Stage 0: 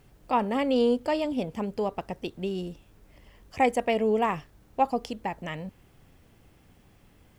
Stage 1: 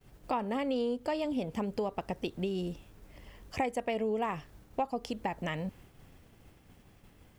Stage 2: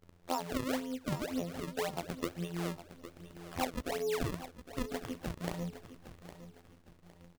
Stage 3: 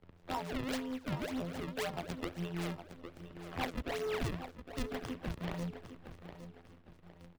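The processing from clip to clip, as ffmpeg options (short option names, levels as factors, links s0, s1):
-af "agate=range=0.0224:threshold=0.00224:ratio=3:detection=peak,acompressor=threshold=0.0224:ratio=4,volume=1.33"
-af "afftfilt=real='hypot(re,im)*cos(PI*b)':imag='0':win_size=2048:overlap=0.75,acrusher=samples=33:mix=1:aa=0.000001:lfo=1:lforange=52.8:lforate=1.9,aecho=1:1:810|1620|2430:0.224|0.0761|0.0259"
-filter_complex "[0:a]acrossover=split=110|1400|4000[s0][s1][s2][s3];[s1]asoftclip=type=tanh:threshold=0.0178[s4];[s3]acrusher=samples=12:mix=1:aa=0.000001:lfo=1:lforange=19.2:lforate=3.7[s5];[s0][s4][s2][s5]amix=inputs=4:normalize=0,volume=1.19"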